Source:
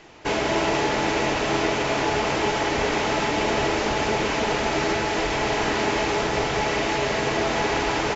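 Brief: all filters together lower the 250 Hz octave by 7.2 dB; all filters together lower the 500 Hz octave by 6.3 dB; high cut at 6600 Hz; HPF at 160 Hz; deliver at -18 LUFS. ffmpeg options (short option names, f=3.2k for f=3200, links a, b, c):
-af "highpass=160,lowpass=6.6k,equalizer=f=250:t=o:g=-6.5,equalizer=f=500:t=o:g=-6.5,volume=7.5dB"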